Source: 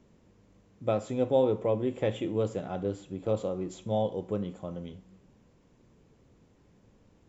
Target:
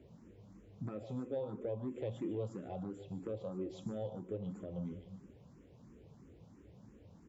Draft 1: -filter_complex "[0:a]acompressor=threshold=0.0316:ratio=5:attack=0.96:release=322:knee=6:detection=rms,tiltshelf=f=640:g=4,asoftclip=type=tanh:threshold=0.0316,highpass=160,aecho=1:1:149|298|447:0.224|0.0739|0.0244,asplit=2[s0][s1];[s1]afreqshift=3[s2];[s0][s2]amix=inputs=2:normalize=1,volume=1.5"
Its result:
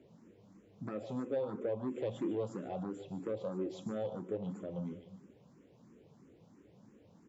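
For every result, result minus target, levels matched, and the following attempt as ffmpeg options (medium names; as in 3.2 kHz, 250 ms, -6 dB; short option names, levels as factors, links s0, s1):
compression: peak gain reduction -5 dB; 125 Hz band -4.0 dB
-filter_complex "[0:a]acompressor=threshold=0.015:ratio=5:attack=0.96:release=322:knee=6:detection=rms,tiltshelf=f=640:g=4,asoftclip=type=tanh:threshold=0.0316,highpass=160,aecho=1:1:149|298|447:0.224|0.0739|0.0244,asplit=2[s0][s1];[s1]afreqshift=3[s2];[s0][s2]amix=inputs=2:normalize=1,volume=1.5"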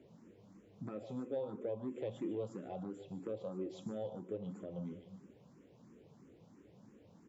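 125 Hz band -4.0 dB
-filter_complex "[0:a]acompressor=threshold=0.015:ratio=5:attack=0.96:release=322:knee=6:detection=rms,tiltshelf=f=640:g=4,asoftclip=type=tanh:threshold=0.0316,highpass=57,aecho=1:1:149|298|447:0.224|0.0739|0.0244,asplit=2[s0][s1];[s1]afreqshift=3[s2];[s0][s2]amix=inputs=2:normalize=1,volume=1.5"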